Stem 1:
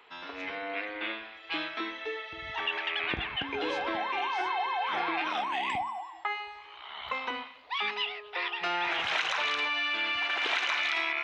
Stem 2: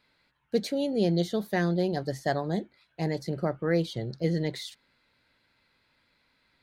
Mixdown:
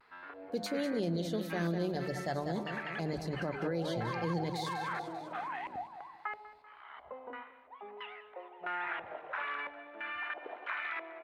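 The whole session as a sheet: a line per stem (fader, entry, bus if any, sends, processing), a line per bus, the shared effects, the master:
-10.0 dB, 0.00 s, no send, echo send -17.5 dB, LFO low-pass square 1.5 Hz 600–1600 Hz
-4.5 dB, 0.00 s, no send, echo send -9.5 dB, notch 1900 Hz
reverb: off
echo: feedback echo 0.197 s, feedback 58%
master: notches 50/100/150/200 Hz; vibrato 0.5 Hz 31 cents; limiter -25 dBFS, peak gain reduction 7.5 dB

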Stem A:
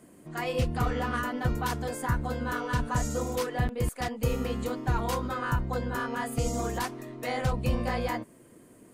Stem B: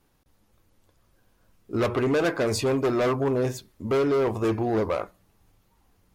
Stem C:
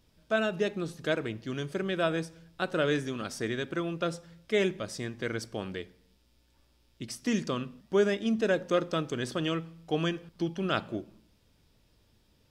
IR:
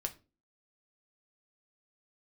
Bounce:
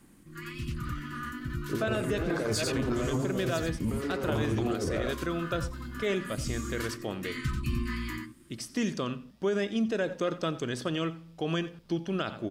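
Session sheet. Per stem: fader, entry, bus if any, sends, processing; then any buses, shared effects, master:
-2.5 dB, 0.00 s, no send, echo send -5.5 dB, Chebyshev band-stop 350–1100 Hz, order 4; auto duck -7 dB, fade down 0.50 s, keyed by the second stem
+1.5 dB, 0.00 s, no send, echo send -6.5 dB, negative-ratio compressor -28 dBFS, ratio -0.5; rotary speaker horn 0.65 Hz
+0.5 dB, 1.50 s, no send, echo send -19 dB, dry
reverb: off
echo: echo 89 ms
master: limiter -20.5 dBFS, peak gain reduction 9.5 dB

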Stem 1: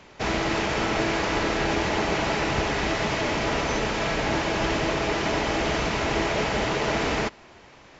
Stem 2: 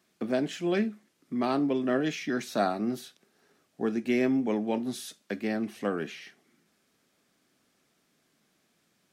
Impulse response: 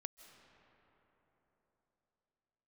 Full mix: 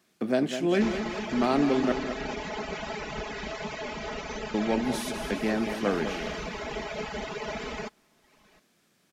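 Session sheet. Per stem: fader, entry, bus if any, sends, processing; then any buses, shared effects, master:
-10.0 dB, 0.60 s, no send, no echo send, reverb removal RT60 1 s; comb 4.7 ms, depth 78%
+2.5 dB, 0.00 s, muted 1.92–4.54, no send, echo send -9 dB, dry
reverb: off
echo: feedback echo 0.203 s, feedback 49%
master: dry

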